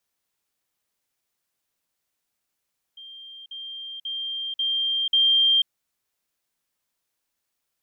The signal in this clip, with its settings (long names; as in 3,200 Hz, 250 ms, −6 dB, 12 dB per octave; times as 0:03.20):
level staircase 3,180 Hz −39.5 dBFS, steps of 6 dB, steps 5, 0.49 s 0.05 s